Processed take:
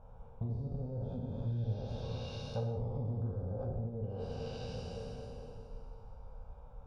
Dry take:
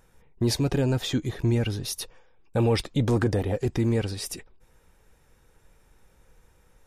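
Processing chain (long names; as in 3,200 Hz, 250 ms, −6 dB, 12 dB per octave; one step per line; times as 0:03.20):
peak hold with a decay on every bin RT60 2.99 s
treble cut that deepens with the level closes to 380 Hz, closed at −17 dBFS
healed spectral selection 0:01.45–0:02.25, 1,400–6,300 Hz both
low-pass that shuts in the quiet parts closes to 1,100 Hz, open at −19 dBFS
downward compressor 4 to 1, threshold −41 dBFS, peak gain reduction 18.5 dB
phaser with its sweep stopped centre 780 Hz, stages 4
reverb whose tail is shaped and stops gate 270 ms falling, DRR 1.5 dB
level +4 dB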